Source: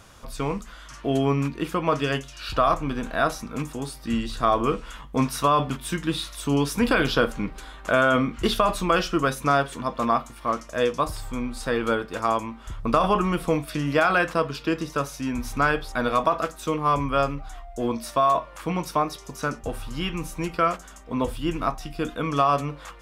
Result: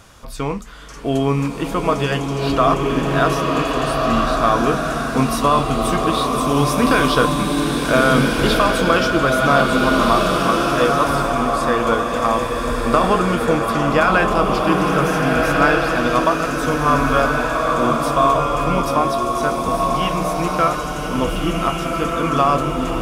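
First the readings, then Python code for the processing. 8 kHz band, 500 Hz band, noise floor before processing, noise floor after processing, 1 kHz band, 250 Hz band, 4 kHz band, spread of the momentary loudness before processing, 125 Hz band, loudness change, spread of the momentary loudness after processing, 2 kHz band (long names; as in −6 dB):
+8.0 dB, +7.5 dB, −44 dBFS, −25 dBFS, +7.5 dB, +7.5 dB, +7.5 dB, 10 LU, +7.5 dB, +7.5 dB, 6 LU, +8.0 dB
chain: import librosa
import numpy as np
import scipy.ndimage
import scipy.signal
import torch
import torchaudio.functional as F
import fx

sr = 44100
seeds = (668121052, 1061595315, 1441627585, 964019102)

y = fx.rev_bloom(x, sr, seeds[0], attack_ms=1680, drr_db=-1.5)
y = y * librosa.db_to_amplitude(4.0)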